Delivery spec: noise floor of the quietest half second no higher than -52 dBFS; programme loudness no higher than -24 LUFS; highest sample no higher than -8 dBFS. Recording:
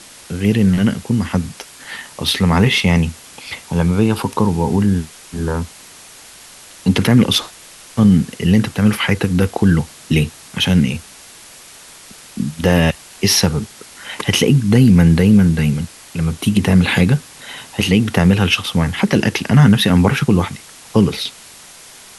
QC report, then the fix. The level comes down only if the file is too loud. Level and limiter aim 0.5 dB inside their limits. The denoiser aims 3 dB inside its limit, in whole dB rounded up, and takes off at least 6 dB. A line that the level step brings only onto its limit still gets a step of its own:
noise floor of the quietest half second -40 dBFS: fail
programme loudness -15.5 LUFS: fail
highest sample -2.0 dBFS: fail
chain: noise reduction 6 dB, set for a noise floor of -40 dBFS; trim -9 dB

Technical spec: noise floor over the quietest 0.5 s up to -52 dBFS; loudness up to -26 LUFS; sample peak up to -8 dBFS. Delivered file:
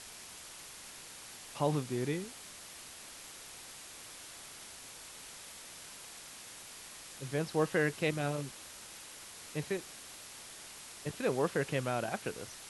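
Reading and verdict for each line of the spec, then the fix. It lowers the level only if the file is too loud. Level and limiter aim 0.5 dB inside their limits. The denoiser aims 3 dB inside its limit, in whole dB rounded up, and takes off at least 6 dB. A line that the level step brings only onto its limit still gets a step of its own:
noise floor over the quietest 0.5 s -50 dBFS: fail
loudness -39.0 LUFS: pass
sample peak -17.5 dBFS: pass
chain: noise reduction 6 dB, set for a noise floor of -50 dBFS

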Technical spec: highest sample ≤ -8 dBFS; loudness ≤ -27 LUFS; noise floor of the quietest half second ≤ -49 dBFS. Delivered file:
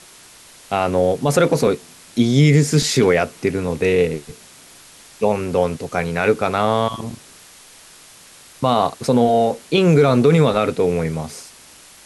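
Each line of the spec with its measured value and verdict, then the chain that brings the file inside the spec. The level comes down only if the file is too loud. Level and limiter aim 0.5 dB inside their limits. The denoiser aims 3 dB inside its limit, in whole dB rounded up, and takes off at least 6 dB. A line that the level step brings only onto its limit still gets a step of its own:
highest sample -4.5 dBFS: fail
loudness -18.0 LUFS: fail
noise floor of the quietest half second -45 dBFS: fail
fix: trim -9.5 dB

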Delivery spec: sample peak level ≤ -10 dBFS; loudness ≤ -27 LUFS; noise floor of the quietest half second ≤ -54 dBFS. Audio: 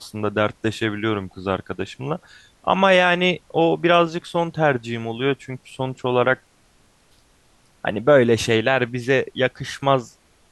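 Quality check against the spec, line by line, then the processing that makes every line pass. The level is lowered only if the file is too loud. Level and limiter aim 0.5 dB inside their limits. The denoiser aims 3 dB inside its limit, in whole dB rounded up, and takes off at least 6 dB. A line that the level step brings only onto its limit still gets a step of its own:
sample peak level -3.5 dBFS: fail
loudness -20.5 LUFS: fail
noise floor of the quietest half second -57 dBFS: pass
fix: trim -7 dB

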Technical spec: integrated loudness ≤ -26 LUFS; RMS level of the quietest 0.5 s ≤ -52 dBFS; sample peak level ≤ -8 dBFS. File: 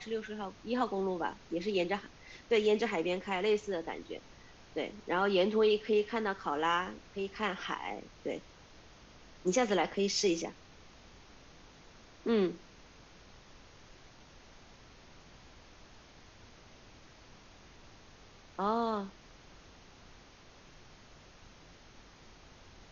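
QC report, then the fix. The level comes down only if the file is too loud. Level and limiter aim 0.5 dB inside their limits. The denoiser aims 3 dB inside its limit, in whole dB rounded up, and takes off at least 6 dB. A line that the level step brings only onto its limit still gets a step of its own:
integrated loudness -33.0 LUFS: pass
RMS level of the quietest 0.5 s -57 dBFS: pass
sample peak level -17.0 dBFS: pass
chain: none needed

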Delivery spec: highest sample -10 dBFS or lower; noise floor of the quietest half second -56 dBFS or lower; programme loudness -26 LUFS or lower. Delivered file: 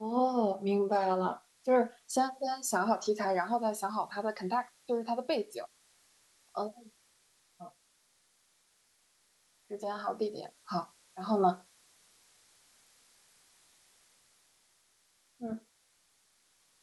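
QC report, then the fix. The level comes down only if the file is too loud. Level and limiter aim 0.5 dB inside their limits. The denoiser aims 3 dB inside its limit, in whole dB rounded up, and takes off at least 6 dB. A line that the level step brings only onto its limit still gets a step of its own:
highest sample -15.5 dBFS: pass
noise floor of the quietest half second -71 dBFS: pass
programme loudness -33.0 LUFS: pass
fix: none needed

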